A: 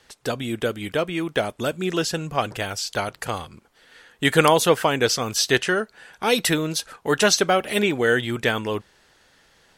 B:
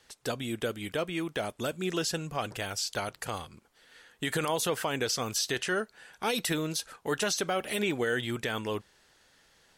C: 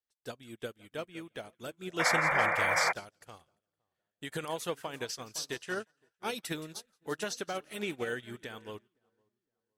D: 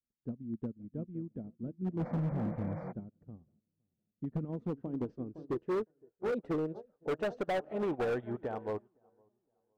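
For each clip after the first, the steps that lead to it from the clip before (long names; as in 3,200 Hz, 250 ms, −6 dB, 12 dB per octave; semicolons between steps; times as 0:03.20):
high-shelf EQ 5,300 Hz +7 dB; brickwall limiter −12 dBFS, peak gain reduction 11 dB; high-shelf EQ 11,000 Hz −4 dB; level −7 dB
echo with a time of its own for lows and highs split 1,300 Hz, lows 512 ms, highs 172 ms, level −13.5 dB; sound drawn into the spectrogram noise, 0:01.99–0:02.93, 470–2,400 Hz −26 dBFS; expander for the loud parts 2.5 to 1, over −48 dBFS
low-pass filter sweep 220 Hz → 760 Hz, 0:04.35–0:07.87; hard clipping −34.5 dBFS, distortion −8 dB; level +5.5 dB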